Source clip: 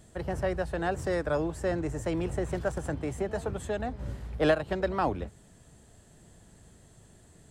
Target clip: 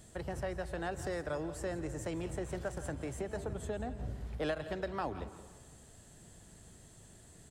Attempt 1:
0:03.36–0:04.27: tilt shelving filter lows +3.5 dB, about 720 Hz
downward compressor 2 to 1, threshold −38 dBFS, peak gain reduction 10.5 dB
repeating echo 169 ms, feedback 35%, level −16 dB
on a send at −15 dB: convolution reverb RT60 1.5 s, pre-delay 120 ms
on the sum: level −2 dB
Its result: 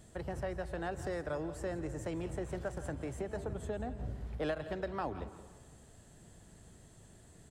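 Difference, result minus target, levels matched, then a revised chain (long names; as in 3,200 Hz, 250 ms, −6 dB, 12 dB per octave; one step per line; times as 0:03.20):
4,000 Hz band −3.0 dB
0:03.36–0:04.27: tilt shelving filter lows +3.5 dB, about 720 Hz
downward compressor 2 to 1, threshold −38 dBFS, peak gain reduction 10.5 dB
high-shelf EQ 2,700 Hz +5 dB
repeating echo 169 ms, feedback 35%, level −16 dB
on a send at −15 dB: convolution reverb RT60 1.5 s, pre-delay 120 ms
on the sum: level −2 dB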